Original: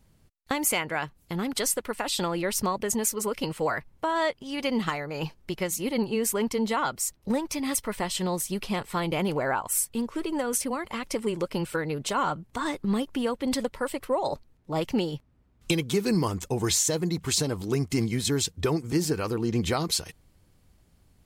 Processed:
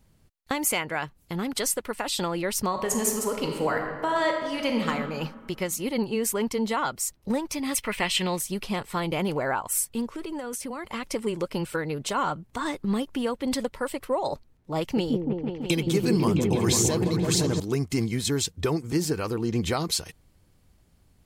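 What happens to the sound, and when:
2.68–4.89 reverb throw, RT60 1.7 s, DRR 2.5 dB
7.76–8.39 bell 2500 Hz +14 dB 0.99 oct
10.07–10.84 compressor, threshold -30 dBFS
14.8–17.6 repeats that get brighter 0.166 s, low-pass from 400 Hz, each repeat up 1 oct, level 0 dB

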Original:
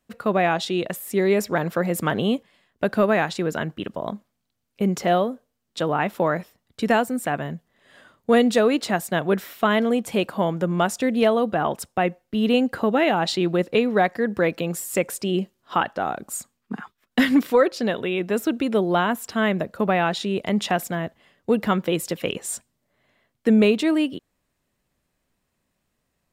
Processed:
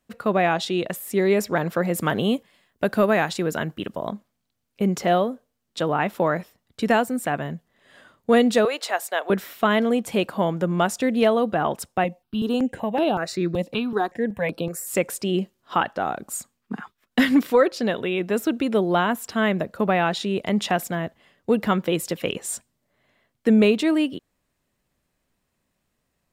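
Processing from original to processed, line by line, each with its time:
2–4.08 high shelf 9100 Hz +9 dB
8.65–9.3 HPF 490 Hz 24 dB/oct
12.04–14.87 step phaser 5.3 Hz 390–6800 Hz

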